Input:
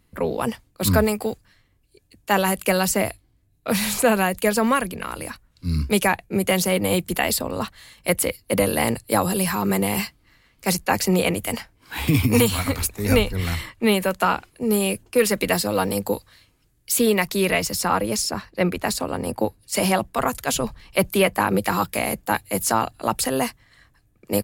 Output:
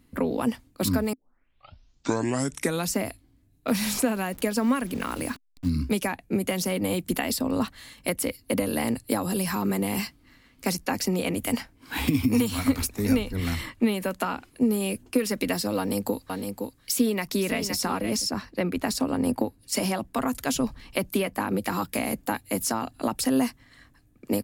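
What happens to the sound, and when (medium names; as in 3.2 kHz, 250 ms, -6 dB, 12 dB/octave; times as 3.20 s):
1.13 s: tape start 1.83 s
3.68–5.70 s: send-on-delta sampling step -40.5 dBFS
15.78–18.28 s: delay 514 ms -11 dB
whole clip: dynamic bell 5.5 kHz, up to +6 dB, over -45 dBFS, Q 4.7; compression, threshold -25 dBFS; peaking EQ 260 Hz +11.5 dB 0.45 oct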